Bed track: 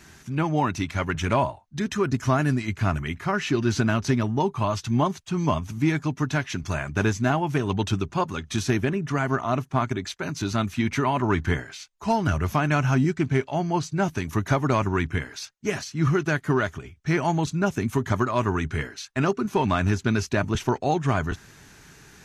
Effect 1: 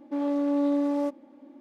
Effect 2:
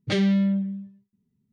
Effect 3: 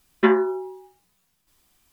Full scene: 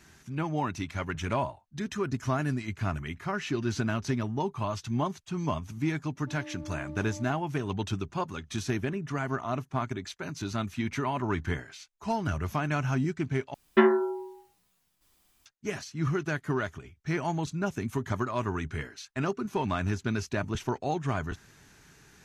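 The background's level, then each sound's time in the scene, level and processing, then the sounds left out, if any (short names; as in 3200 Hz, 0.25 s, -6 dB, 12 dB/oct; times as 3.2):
bed track -7 dB
6.15 add 1 -17.5 dB + frequency shift +21 Hz
13.54 replace with 3 -3 dB
not used: 2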